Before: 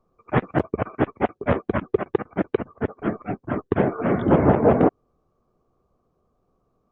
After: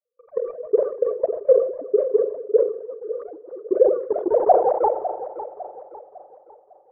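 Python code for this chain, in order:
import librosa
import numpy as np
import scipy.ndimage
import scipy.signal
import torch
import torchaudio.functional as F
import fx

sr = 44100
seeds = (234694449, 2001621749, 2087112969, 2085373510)

p1 = fx.sine_speech(x, sr)
p2 = fx.low_shelf(p1, sr, hz=380.0, db=-9.0)
p3 = fx.level_steps(p2, sr, step_db=23)
p4 = fx.leveller(p3, sr, passes=1)
p5 = fx.filter_sweep_lowpass(p4, sr, from_hz=500.0, to_hz=2000.0, start_s=3.7, end_s=6.77, q=6.9)
p6 = p5 + fx.echo_feedback(p5, sr, ms=553, feedback_pct=39, wet_db=-13, dry=0)
p7 = fx.rev_spring(p6, sr, rt60_s=3.8, pass_ms=(42,), chirp_ms=25, drr_db=20.0)
p8 = fx.sustainer(p7, sr, db_per_s=94.0)
y = F.gain(torch.from_numpy(p8), -3.0).numpy()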